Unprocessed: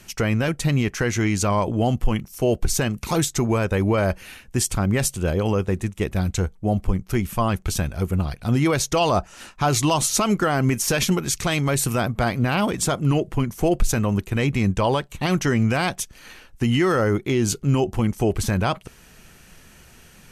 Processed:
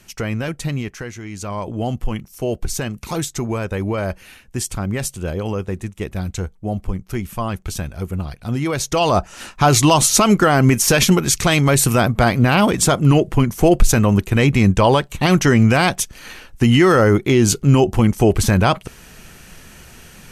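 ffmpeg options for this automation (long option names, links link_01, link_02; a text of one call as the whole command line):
ffmpeg -i in.wav -af "volume=17.5dB,afade=type=out:start_time=0.64:duration=0.58:silence=0.298538,afade=type=in:start_time=1.22:duration=0.63:silence=0.298538,afade=type=in:start_time=8.66:duration=0.87:silence=0.354813" out.wav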